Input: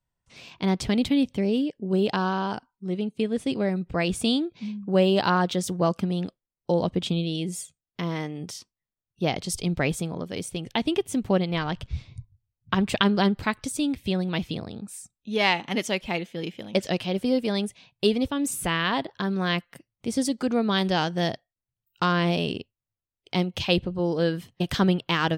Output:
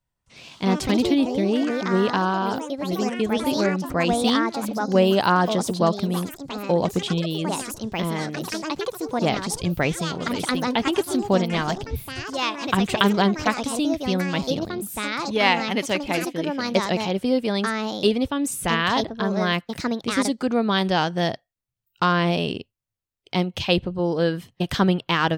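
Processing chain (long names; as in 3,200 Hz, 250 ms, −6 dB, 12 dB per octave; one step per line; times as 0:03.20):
dynamic equaliser 1,000 Hz, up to +3 dB, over −35 dBFS, Q 0.81
delay with pitch and tempo change per echo 163 ms, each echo +4 semitones, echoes 3, each echo −6 dB
level +1.5 dB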